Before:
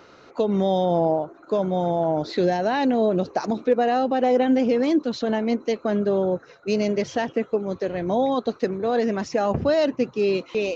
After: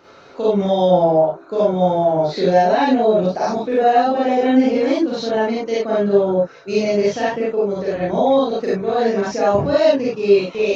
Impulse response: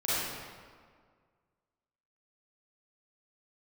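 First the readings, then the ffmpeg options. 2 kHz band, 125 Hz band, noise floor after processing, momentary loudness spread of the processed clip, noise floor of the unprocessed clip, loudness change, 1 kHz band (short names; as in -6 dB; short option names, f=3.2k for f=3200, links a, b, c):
+5.0 dB, +4.0 dB, -43 dBFS, 6 LU, -50 dBFS, +5.5 dB, +7.0 dB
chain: -filter_complex "[1:a]atrim=start_sample=2205,afade=t=out:st=0.15:d=0.01,atrim=end_sample=7056[a];[0:a][a]afir=irnorm=-1:irlink=0,volume=-1.5dB"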